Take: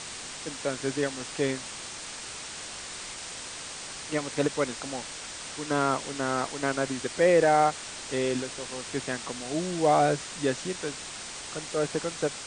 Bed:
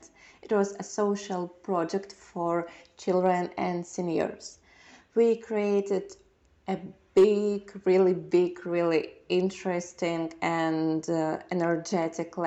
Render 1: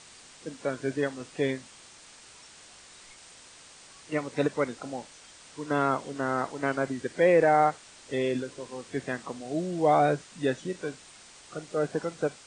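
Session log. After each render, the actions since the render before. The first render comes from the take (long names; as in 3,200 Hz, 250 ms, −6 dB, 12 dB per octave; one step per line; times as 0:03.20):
noise reduction from a noise print 12 dB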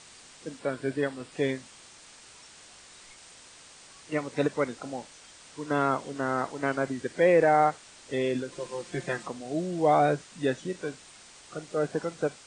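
0:00.59–0:01.32: parametric band 6,300 Hz −10 dB 0.28 octaves
0:08.52–0:09.28: comb filter 5.7 ms, depth 88%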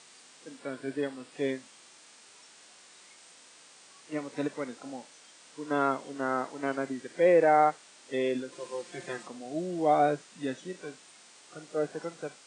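high-pass filter 220 Hz 12 dB per octave
harmonic and percussive parts rebalanced percussive −10 dB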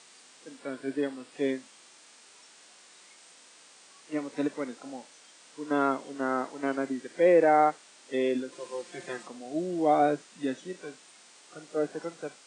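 dynamic equaliser 290 Hz, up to +4 dB, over −39 dBFS, Q 1.6
high-pass filter 150 Hz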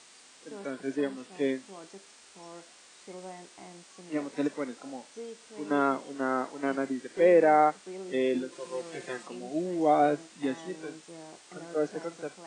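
mix in bed −19.5 dB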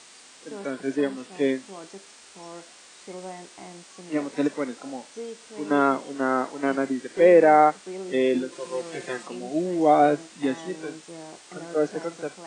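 level +5.5 dB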